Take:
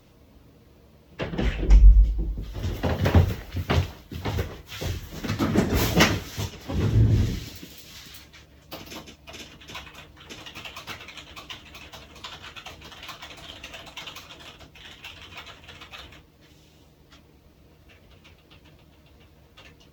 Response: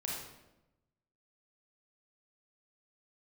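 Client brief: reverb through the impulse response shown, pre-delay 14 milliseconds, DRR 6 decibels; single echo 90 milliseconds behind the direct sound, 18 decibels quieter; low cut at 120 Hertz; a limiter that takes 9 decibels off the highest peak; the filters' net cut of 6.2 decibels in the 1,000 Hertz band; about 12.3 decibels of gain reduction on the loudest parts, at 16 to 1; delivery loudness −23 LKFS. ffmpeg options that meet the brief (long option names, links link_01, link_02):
-filter_complex "[0:a]highpass=120,equalizer=frequency=1000:width_type=o:gain=-8.5,acompressor=threshold=-28dB:ratio=16,alimiter=level_in=3.5dB:limit=-24dB:level=0:latency=1,volume=-3.5dB,aecho=1:1:90:0.126,asplit=2[link_01][link_02];[1:a]atrim=start_sample=2205,adelay=14[link_03];[link_02][link_03]afir=irnorm=-1:irlink=0,volume=-8dB[link_04];[link_01][link_04]amix=inputs=2:normalize=0,volume=16dB"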